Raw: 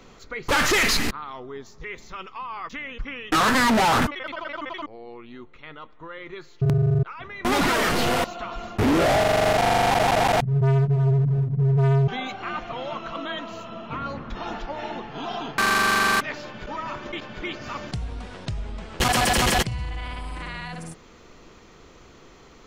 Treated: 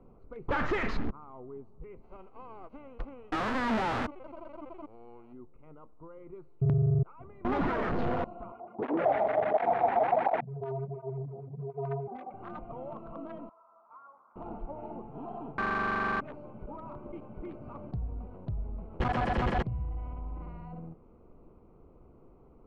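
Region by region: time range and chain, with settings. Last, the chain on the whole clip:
2.01–5.32 s: formants flattened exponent 0.3 + peaking EQ 160 Hz -10 dB 0.23 oct
8.52–12.34 s: high-pass 270 Hz + LFO low-pass square 6.6 Hz 780–2200 Hz + cancelling through-zero flanger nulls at 1.4 Hz, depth 7 ms
13.49–14.36 s: Butterworth band-pass 1.3 kHz, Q 1.5 + distance through air 460 m
whole clip: local Wiener filter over 25 samples; low-pass 1.6 kHz 12 dB/octave; bass shelf 140 Hz +3.5 dB; trim -7 dB

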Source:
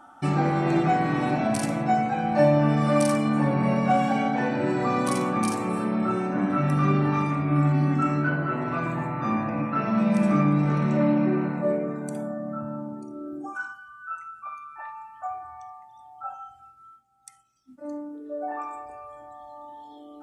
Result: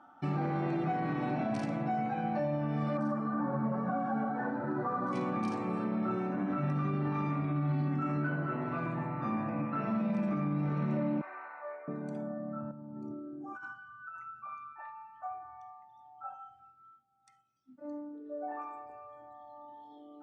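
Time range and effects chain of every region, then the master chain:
2.97–5.13 s: resonant high shelf 1.9 kHz -10 dB, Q 3 + three-phase chorus
7.44–7.89 s: FFT filter 2.6 kHz 0 dB, 3.8 kHz +7 dB, 7.3 kHz -8 dB + tape noise reduction on one side only encoder only
11.21–11.88 s: high-pass 800 Hz 24 dB/octave + resonant high shelf 2.4 kHz -7 dB, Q 1.5
12.71–14.73 s: peaking EQ 96 Hz +9 dB 2.4 oct + compressor with a negative ratio -36 dBFS
whole clip: Chebyshev band-pass 120–4900 Hz, order 2; treble shelf 3.5 kHz -10.5 dB; peak limiter -18.5 dBFS; trim -6 dB

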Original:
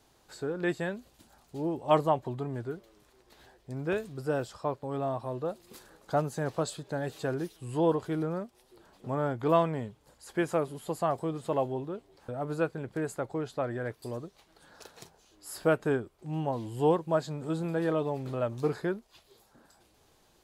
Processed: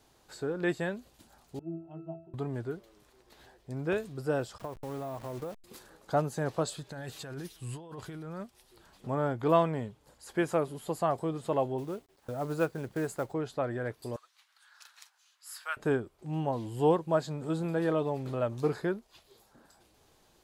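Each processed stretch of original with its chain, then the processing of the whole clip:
1.59–2.34 s: companding laws mixed up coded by mu + pitch-class resonator E, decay 0.47 s
4.58–5.64 s: send-on-delta sampling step -43 dBFS + compression 12:1, threshold -33 dBFS
6.77–9.07 s: peaking EQ 420 Hz -8.5 dB 2.6 oct + compressor with a negative ratio -41 dBFS
11.78–13.33 s: expander -54 dBFS + companded quantiser 6-bit
14.16–15.77 s: high-pass 1.2 kHz 24 dB/octave + treble shelf 4.5 kHz -3.5 dB
whole clip: none

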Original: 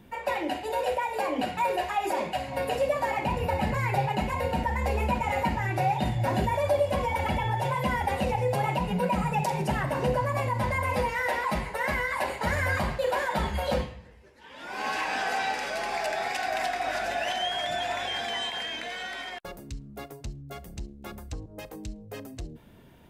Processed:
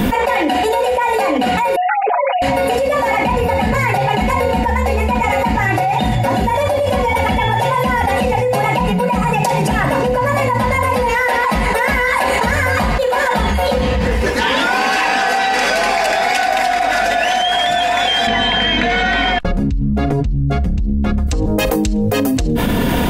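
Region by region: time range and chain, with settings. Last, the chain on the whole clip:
1.76–2.42 s: formants replaced by sine waves + comb 7.2 ms, depth 99%
18.27–21.27 s: low-pass 6.4 kHz + tone controls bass +15 dB, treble -7 dB
whole clip: comb 4.1 ms, depth 44%; level flattener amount 100%

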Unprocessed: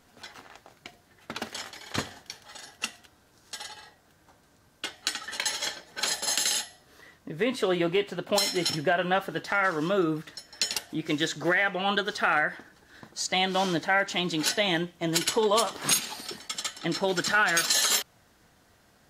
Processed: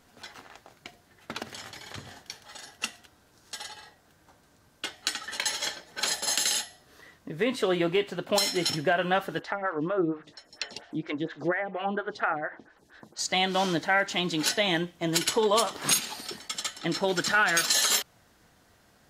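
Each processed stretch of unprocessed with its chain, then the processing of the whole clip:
1.42–2.09 s: peaking EQ 120 Hz +10 dB 1.3 oct + compression 12:1, threshold -36 dBFS
9.39–13.19 s: low-pass that closes with the level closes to 1.4 kHz, closed at -22.5 dBFS + lamp-driven phase shifter 4.3 Hz
whole clip: none

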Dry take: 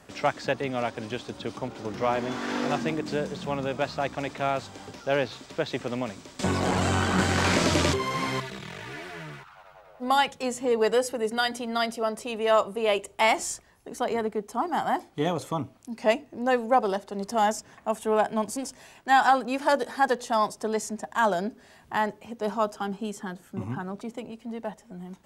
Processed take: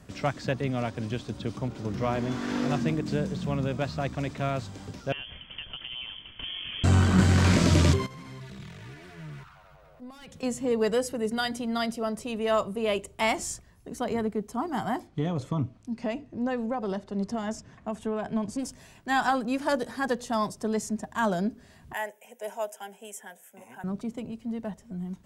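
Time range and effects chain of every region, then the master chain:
5.12–6.84 s: bass shelf 200 Hz +9.5 dB + compression 10:1, threshold -30 dBFS + frequency inversion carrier 3.3 kHz
8.06–10.43 s: transient shaper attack -10 dB, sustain +3 dB + hard clipper -22.5 dBFS + compression 16:1, threshold -40 dBFS
15.07–18.59 s: compression 3:1, threshold -24 dBFS + distance through air 70 m
21.93–23.84 s: high-pass 350 Hz 24 dB/octave + treble shelf 5 kHz +12 dB + static phaser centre 1.2 kHz, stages 6
whole clip: tone controls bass +13 dB, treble +2 dB; band-stop 830 Hz, Q 12; trim -4 dB

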